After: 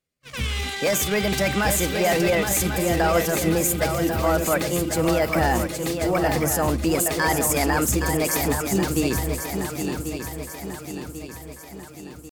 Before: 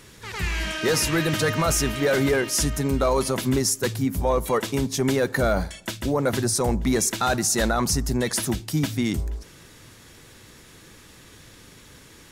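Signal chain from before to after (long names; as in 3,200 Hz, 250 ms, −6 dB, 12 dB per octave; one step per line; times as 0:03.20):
noise gate −34 dBFS, range −36 dB
pitch shifter +4 semitones
feedback echo with a long and a short gap by turns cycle 1,092 ms, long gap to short 3 to 1, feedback 50%, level −6.5 dB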